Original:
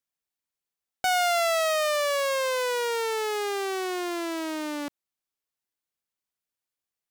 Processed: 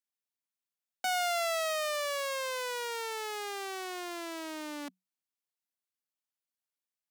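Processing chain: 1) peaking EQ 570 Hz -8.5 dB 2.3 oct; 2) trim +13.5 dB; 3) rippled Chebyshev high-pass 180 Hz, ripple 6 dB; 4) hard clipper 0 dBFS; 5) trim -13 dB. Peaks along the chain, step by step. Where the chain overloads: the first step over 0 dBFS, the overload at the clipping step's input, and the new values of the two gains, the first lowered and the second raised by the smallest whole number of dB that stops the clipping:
-16.0 dBFS, -2.5 dBFS, -5.0 dBFS, -5.0 dBFS, -18.0 dBFS; nothing clips

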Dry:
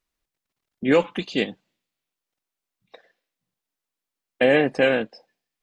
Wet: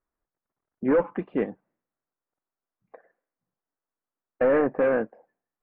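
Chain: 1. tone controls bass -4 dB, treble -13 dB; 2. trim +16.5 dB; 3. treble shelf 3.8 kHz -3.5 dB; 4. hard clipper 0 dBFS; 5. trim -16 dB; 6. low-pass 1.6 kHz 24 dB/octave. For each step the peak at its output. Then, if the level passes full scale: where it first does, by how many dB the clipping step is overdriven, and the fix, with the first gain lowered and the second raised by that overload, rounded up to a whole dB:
-7.0 dBFS, +9.5 dBFS, +9.5 dBFS, 0.0 dBFS, -16.0 dBFS, -14.5 dBFS; step 2, 9.5 dB; step 2 +6.5 dB, step 5 -6 dB

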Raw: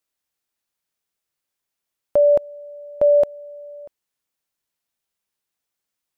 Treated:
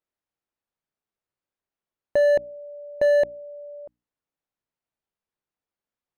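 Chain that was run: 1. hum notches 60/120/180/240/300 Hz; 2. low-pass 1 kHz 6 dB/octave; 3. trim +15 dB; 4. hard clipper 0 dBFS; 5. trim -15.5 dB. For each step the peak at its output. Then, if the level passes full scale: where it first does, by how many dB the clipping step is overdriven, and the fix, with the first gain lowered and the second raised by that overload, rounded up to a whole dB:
-10.0 dBFS, -11.0 dBFS, +4.0 dBFS, 0.0 dBFS, -15.5 dBFS; step 3, 4.0 dB; step 3 +11 dB, step 5 -11.5 dB

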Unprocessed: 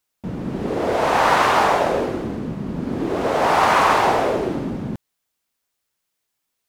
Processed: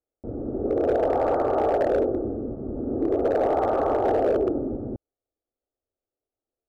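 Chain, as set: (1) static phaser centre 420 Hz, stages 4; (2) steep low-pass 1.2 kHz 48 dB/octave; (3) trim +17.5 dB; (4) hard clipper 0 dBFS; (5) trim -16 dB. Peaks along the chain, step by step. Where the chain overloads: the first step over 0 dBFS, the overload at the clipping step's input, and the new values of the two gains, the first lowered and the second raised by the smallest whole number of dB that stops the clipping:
-10.0 dBFS, -11.0 dBFS, +6.5 dBFS, 0.0 dBFS, -16.0 dBFS; step 3, 6.5 dB; step 3 +10.5 dB, step 5 -9 dB

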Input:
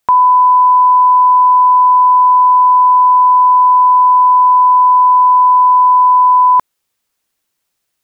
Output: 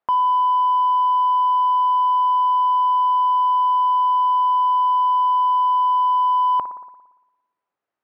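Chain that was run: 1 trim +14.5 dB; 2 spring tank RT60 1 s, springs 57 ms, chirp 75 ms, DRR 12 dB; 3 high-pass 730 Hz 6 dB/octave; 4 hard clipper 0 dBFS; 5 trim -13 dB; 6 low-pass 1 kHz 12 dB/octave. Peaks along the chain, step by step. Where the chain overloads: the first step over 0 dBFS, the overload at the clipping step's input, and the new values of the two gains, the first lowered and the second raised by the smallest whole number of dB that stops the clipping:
+10.0 dBFS, +10.5 dBFS, +8.5 dBFS, 0.0 dBFS, -13.0 dBFS, -13.5 dBFS; step 1, 8.5 dB; step 1 +5.5 dB, step 5 -4 dB

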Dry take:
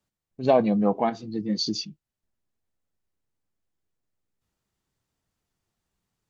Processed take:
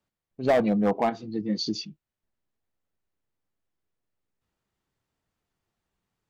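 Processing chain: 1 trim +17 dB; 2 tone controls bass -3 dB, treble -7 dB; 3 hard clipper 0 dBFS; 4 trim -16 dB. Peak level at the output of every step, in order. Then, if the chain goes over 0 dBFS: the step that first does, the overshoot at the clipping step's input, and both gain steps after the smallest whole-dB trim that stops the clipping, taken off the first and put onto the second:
+9.5 dBFS, +9.0 dBFS, 0.0 dBFS, -16.0 dBFS; step 1, 9.0 dB; step 1 +8 dB, step 4 -7 dB

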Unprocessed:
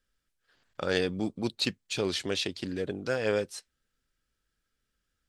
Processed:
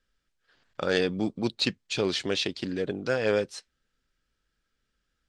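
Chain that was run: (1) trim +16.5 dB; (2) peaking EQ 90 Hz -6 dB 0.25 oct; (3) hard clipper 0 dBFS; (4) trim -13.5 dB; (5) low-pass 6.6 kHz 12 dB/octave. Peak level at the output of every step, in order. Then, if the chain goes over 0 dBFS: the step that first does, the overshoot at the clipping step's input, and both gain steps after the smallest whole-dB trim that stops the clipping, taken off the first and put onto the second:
+4.0 dBFS, +4.0 dBFS, 0.0 dBFS, -13.5 dBFS, -13.0 dBFS; step 1, 4.0 dB; step 1 +12.5 dB, step 4 -9.5 dB

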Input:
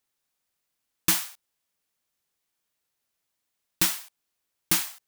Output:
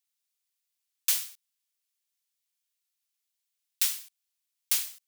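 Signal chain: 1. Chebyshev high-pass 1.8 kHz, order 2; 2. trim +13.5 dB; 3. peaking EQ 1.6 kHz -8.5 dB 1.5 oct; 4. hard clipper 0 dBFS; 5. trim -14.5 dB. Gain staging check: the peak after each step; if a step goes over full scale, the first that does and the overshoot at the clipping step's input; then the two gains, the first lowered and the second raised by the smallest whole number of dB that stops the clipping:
-8.5 dBFS, +5.0 dBFS, +4.0 dBFS, 0.0 dBFS, -14.5 dBFS; step 2, 4.0 dB; step 2 +9.5 dB, step 5 -10.5 dB

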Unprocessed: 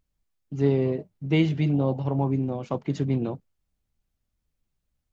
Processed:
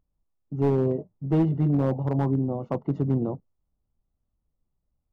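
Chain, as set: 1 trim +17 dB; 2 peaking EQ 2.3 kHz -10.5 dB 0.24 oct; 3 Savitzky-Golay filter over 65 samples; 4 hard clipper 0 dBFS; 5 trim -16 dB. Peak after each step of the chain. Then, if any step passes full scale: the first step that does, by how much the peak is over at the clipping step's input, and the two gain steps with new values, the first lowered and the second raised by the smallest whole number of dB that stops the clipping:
+6.5 dBFS, +6.5 dBFS, +6.5 dBFS, 0.0 dBFS, -16.0 dBFS; step 1, 6.5 dB; step 1 +10 dB, step 5 -9 dB

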